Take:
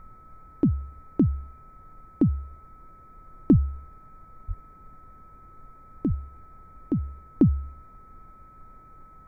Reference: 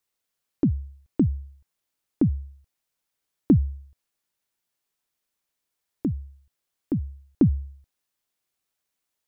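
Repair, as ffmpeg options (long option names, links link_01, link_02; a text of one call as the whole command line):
ffmpeg -i in.wav -filter_complex "[0:a]bandreject=frequency=1300:width=30,asplit=3[link_01][link_02][link_03];[link_01]afade=type=out:start_time=3.51:duration=0.02[link_04];[link_02]highpass=frequency=140:width=0.5412,highpass=frequency=140:width=1.3066,afade=type=in:start_time=3.51:duration=0.02,afade=type=out:start_time=3.63:duration=0.02[link_05];[link_03]afade=type=in:start_time=3.63:duration=0.02[link_06];[link_04][link_05][link_06]amix=inputs=3:normalize=0,asplit=3[link_07][link_08][link_09];[link_07]afade=type=out:start_time=4.47:duration=0.02[link_10];[link_08]highpass=frequency=140:width=0.5412,highpass=frequency=140:width=1.3066,afade=type=in:start_time=4.47:duration=0.02,afade=type=out:start_time=4.59:duration=0.02[link_11];[link_09]afade=type=in:start_time=4.59:duration=0.02[link_12];[link_10][link_11][link_12]amix=inputs=3:normalize=0,asplit=3[link_13][link_14][link_15];[link_13]afade=type=out:start_time=6.08:duration=0.02[link_16];[link_14]highpass=frequency=140:width=0.5412,highpass=frequency=140:width=1.3066,afade=type=in:start_time=6.08:duration=0.02,afade=type=out:start_time=6.2:duration=0.02[link_17];[link_15]afade=type=in:start_time=6.2:duration=0.02[link_18];[link_16][link_17][link_18]amix=inputs=3:normalize=0,afftdn=noise_reduction=30:noise_floor=-50" out.wav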